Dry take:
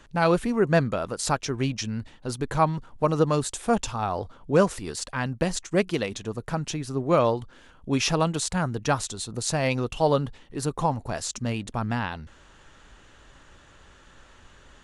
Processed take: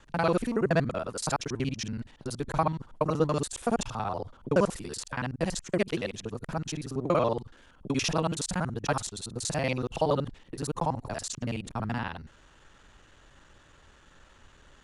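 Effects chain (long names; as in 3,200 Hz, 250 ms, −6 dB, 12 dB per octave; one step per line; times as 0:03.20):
reversed piece by piece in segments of 47 ms
level −4 dB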